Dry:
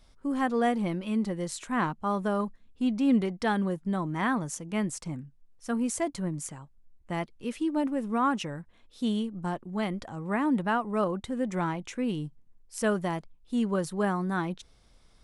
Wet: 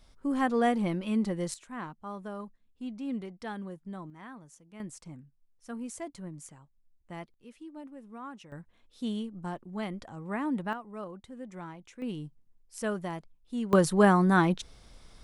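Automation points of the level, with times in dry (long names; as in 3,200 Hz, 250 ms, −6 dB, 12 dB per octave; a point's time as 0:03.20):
0 dB
from 0:01.54 −11.5 dB
from 0:04.10 −19 dB
from 0:04.80 −10 dB
from 0:07.34 −17 dB
from 0:08.52 −5 dB
from 0:10.73 −13 dB
from 0:12.02 −5.5 dB
from 0:13.73 +7 dB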